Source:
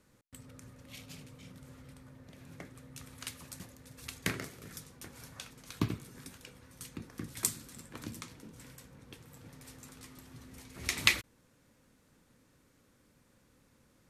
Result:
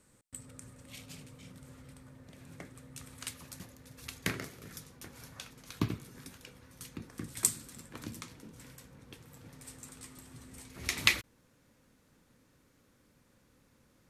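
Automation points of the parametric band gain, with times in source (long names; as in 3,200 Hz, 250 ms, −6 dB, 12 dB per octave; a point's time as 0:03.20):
parametric band 8,300 Hz 0.32 octaves
+12.5 dB
from 0:00.90 +5 dB
from 0:03.33 −2.5 dB
from 0:07.09 +6 dB
from 0:07.70 0 dB
from 0:09.59 +9.5 dB
from 0:10.69 −2 dB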